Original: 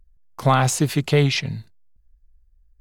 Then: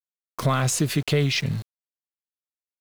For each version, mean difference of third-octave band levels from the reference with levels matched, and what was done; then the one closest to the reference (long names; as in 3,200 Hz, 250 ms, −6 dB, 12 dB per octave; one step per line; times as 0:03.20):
4.0 dB: parametric band 830 Hz −14.5 dB 0.2 octaves
in parallel at −2 dB: brickwall limiter −18 dBFS, peak gain reduction 11 dB
on the sum: downward compressor 2 to 1, threshold −23 dBFS, peak gain reduction 7 dB
centre clipping without the shift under −37 dBFS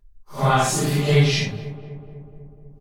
6.5 dB: random phases in long frames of 200 ms
low-shelf EQ 68 Hz +6.5 dB
comb filter 5 ms, depth 46%
feedback echo with a low-pass in the loop 248 ms, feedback 69%, low-pass 1,400 Hz, level −15 dB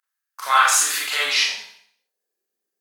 15.5 dB: high-pass filter 230 Hz 12 dB per octave
high-shelf EQ 4,400 Hz +8 dB
high-pass filter sweep 1,400 Hz → 340 Hz, 0:01.10–0:02.45
four-comb reverb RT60 0.59 s, combs from 29 ms, DRR −6.5 dB
level −5 dB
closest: first